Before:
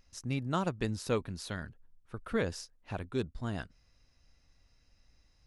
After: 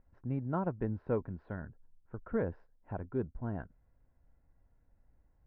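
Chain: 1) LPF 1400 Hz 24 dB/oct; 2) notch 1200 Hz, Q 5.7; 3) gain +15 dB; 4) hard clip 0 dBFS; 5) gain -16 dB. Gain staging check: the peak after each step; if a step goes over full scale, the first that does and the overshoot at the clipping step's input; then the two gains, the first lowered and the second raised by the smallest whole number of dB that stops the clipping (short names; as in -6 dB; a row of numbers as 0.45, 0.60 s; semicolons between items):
-19.5, -19.5, -4.5, -4.5, -20.5 dBFS; no overload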